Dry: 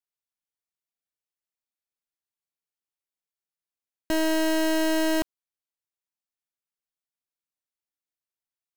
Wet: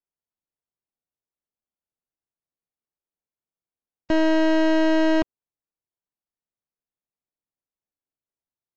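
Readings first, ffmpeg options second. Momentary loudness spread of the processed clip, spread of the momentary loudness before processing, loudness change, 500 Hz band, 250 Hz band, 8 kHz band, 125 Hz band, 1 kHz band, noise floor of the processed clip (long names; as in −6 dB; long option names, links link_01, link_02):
6 LU, 6 LU, +4.5 dB, +5.0 dB, +5.5 dB, below −10 dB, can't be measured, +4.0 dB, below −85 dBFS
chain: -af "adynamicsmooth=sensitivity=1:basefreq=1000,volume=5.5dB" -ar 16000 -c:a aac -b:a 64k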